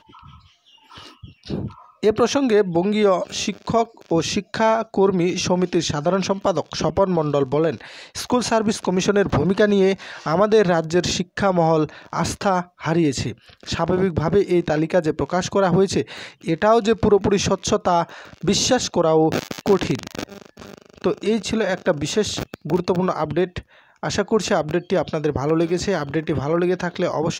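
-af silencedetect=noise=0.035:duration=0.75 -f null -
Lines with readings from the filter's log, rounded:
silence_start: 0.00
silence_end: 0.97 | silence_duration: 0.97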